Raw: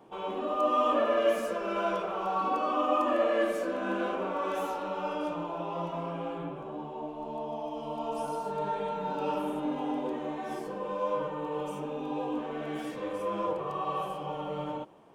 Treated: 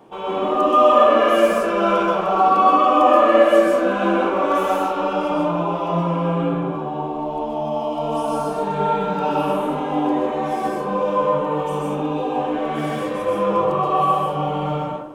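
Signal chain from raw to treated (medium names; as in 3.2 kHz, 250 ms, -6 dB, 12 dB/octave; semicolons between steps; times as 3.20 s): plate-style reverb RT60 0.71 s, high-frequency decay 0.45×, pre-delay 115 ms, DRR -3.5 dB; trim +7.5 dB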